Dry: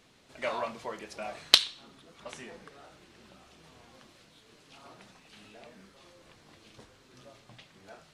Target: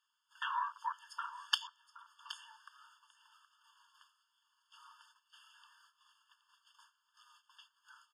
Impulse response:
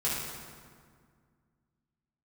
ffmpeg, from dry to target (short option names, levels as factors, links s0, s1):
-af "agate=range=0.224:threshold=0.00178:ratio=16:detection=peak,afwtdn=0.0112,highpass=450,acompressor=threshold=0.00631:ratio=5,aecho=1:1:771:0.188,afftfilt=real='re*eq(mod(floor(b*sr/1024/900),2),1)':imag='im*eq(mod(floor(b*sr/1024/900),2),1)':win_size=1024:overlap=0.75,volume=4.73"